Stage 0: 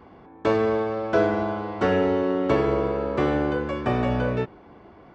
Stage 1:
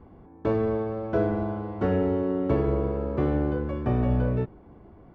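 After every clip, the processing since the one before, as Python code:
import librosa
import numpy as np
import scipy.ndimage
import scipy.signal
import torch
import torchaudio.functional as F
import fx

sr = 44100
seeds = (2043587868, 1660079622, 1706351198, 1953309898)

y = fx.tilt_eq(x, sr, slope=-3.5)
y = y * 10.0 ** (-8.0 / 20.0)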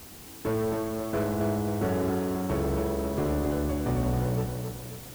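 y = 10.0 ** (-23.0 / 20.0) * np.tanh(x / 10.0 ** (-23.0 / 20.0))
y = fx.quant_dither(y, sr, seeds[0], bits=8, dither='triangular')
y = fx.echo_feedback(y, sr, ms=269, feedback_pct=45, wet_db=-6.0)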